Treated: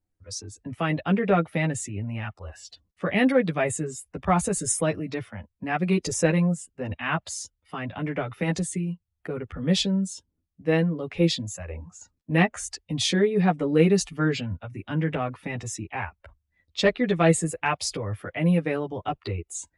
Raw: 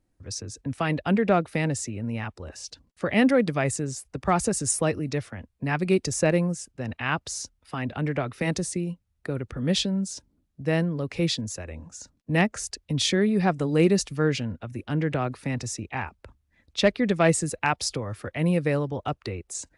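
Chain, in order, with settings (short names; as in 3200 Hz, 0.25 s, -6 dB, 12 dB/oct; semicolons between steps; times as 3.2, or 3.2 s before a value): chorus voices 6, 0.34 Hz, delay 11 ms, depth 1.5 ms; spectral noise reduction 11 dB; gain +3 dB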